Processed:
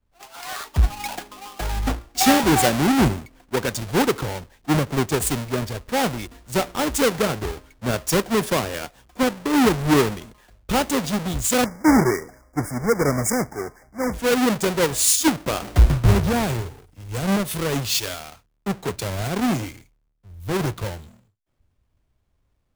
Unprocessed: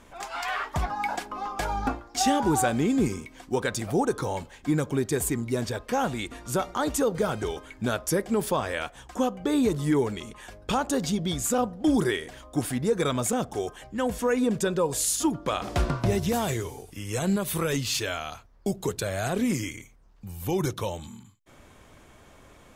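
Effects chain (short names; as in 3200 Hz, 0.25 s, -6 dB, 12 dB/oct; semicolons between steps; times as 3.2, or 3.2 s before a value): half-waves squared off; spectral delete 11.65–14.14, 2300–4800 Hz; three-band expander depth 100%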